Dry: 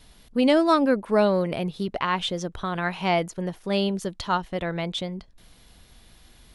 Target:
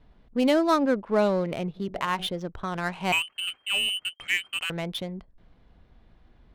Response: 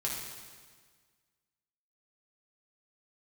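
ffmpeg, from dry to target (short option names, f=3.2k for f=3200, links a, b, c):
-filter_complex "[0:a]asplit=3[a][b][c];[a]afade=t=out:st=1.75:d=0.02[d];[b]bandreject=f=46.76:t=h:w=4,bandreject=f=93.52:t=h:w=4,bandreject=f=140.28:t=h:w=4,bandreject=f=187.04:t=h:w=4,bandreject=f=233.8:t=h:w=4,bandreject=f=280.56:t=h:w=4,bandreject=f=327.32:t=h:w=4,bandreject=f=374.08:t=h:w=4,bandreject=f=420.84:t=h:w=4,bandreject=f=467.6:t=h:w=4,bandreject=f=514.36:t=h:w=4,bandreject=f=561.12:t=h:w=4,bandreject=f=607.88:t=h:w=4,bandreject=f=654.64:t=h:w=4,bandreject=f=701.4:t=h:w=4,bandreject=f=748.16:t=h:w=4,afade=t=in:st=1.75:d=0.02,afade=t=out:st=2.26:d=0.02[e];[c]afade=t=in:st=2.26:d=0.02[f];[d][e][f]amix=inputs=3:normalize=0,asettb=1/sr,asplit=3[g][h][i];[g]atrim=end=3.124[j];[h]atrim=start=3.12:end=4.7,asetpts=PTS-STARTPTS,afade=t=in:d=0.004:c=qsin,afade=t=out:st=1.576:d=0.004:c=qsin,lowpass=f=2.7k:t=q:w=0.5098,lowpass=f=2.7k:t=q:w=0.6013,lowpass=f=2.7k:t=q:w=0.9,lowpass=f=2.7k:t=q:w=2.563,afreqshift=-3200[k];[i]atrim=start=4.696[l];[j][k]acrossfade=d=0.004:c1=hsin:c2=qsin[m];[m][l]acrossfade=d=0.004:c1=qsin:c2=hsin,adynamicsmooth=sensitivity=5.5:basefreq=1.5k,volume=-2.5dB"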